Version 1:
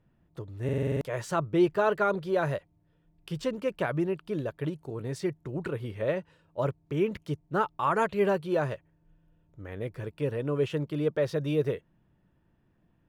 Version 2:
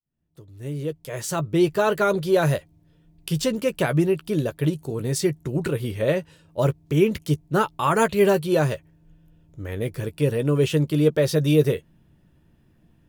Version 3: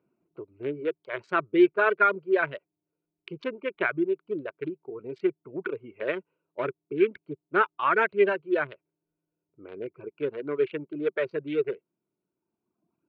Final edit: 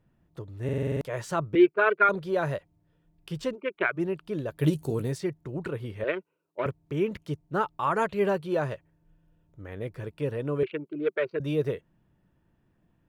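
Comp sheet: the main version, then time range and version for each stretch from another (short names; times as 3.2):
1
1.55–2.09 from 3
3.54–3.98 from 3, crossfade 0.06 s
4.6–5.06 from 2, crossfade 0.24 s
6.04–6.66 from 3
10.63–11.4 from 3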